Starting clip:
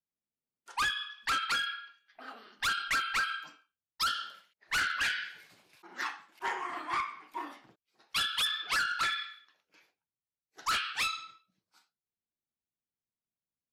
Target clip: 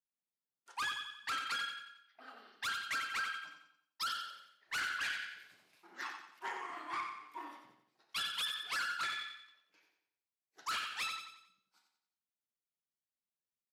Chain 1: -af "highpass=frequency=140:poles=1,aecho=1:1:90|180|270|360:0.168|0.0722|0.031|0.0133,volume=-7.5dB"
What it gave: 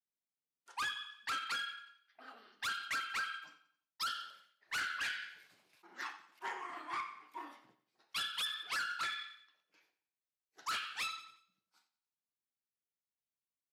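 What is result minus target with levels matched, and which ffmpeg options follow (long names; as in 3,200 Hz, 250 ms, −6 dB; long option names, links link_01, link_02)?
echo-to-direct −8.5 dB
-af "highpass=frequency=140:poles=1,aecho=1:1:90|180|270|360|450:0.447|0.192|0.0826|0.0355|0.0153,volume=-7.5dB"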